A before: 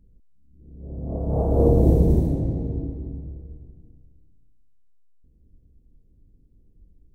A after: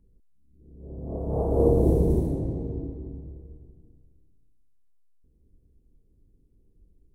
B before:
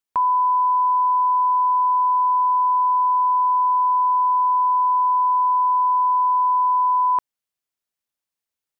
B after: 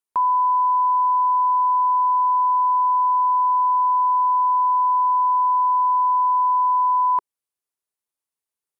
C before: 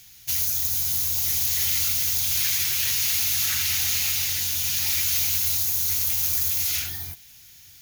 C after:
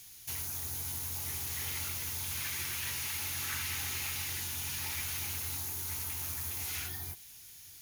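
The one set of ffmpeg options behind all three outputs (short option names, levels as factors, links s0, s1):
-filter_complex "[0:a]acrossover=split=2500[s0][s1];[s1]acompressor=threshold=0.0224:ratio=4:attack=1:release=60[s2];[s0][s2]amix=inputs=2:normalize=0,equalizer=f=400:t=o:w=0.67:g=6,equalizer=f=1000:t=o:w=0.67:g=5,equalizer=f=10000:t=o:w=0.67:g=8,volume=0.531"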